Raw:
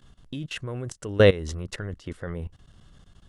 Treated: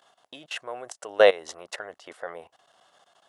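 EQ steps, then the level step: resonant high-pass 700 Hz, resonance Q 3.4; 0.0 dB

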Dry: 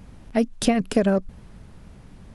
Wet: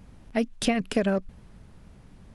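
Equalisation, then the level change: dynamic bell 2.5 kHz, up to +6 dB, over -42 dBFS, Q 0.82; -5.0 dB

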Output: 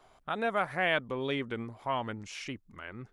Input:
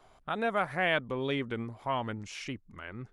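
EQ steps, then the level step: bass shelf 190 Hz -4 dB; 0.0 dB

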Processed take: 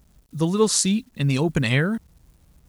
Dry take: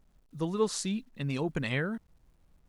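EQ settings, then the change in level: high-pass 52 Hz; bass shelf 180 Hz +9 dB; treble shelf 4.1 kHz +11 dB; +7.0 dB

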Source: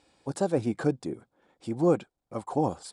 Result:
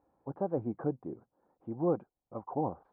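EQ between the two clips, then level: four-pole ladder low-pass 1.3 kHz, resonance 30%; distance through air 310 m; 0.0 dB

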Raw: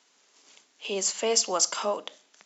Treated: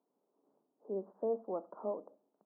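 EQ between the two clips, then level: Gaussian low-pass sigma 12 samples; high-pass 150 Hz; -4.0 dB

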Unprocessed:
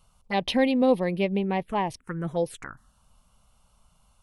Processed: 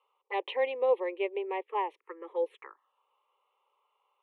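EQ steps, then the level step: steep high-pass 380 Hz 48 dB/octave; distance through air 380 m; static phaser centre 1 kHz, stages 8; 0.0 dB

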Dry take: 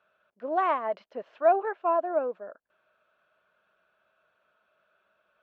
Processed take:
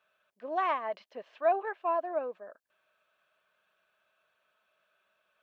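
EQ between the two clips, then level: tilt shelf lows -5.5 dB, about 1.3 kHz; band-stop 1.4 kHz, Q 8.3; -2.0 dB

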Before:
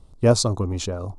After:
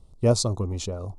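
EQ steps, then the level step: Butterworth band-stop 1.6 kHz, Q 7.6; peaking EQ 280 Hz -4.5 dB 0.29 oct; peaking EQ 1.6 kHz -5 dB 1.9 oct; -2.5 dB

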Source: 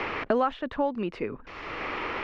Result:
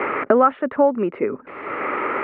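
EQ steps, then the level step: cabinet simulation 210–2500 Hz, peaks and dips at 260 Hz +4 dB, 400 Hz +7 dB, 570 Hz +8 dB, 860 Hz +4 dB, 1.3 kHz +8 dB, 2.1 kHz +6 dB; bass shelf 310 Hz +11 dB; dynamic bell 1.4 kHz, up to +4 dB, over -34 dBFS, Q 1.5; 0.0 dB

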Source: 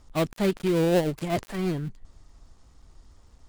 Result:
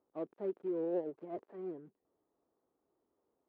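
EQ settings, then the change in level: ladder band-pass 470 Hz, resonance 40%; -3.5 dB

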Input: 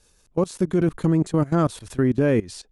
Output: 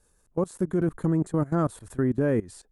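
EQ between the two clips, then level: high-order bell 3.7 kHz -9.5 dB; -4.5 dB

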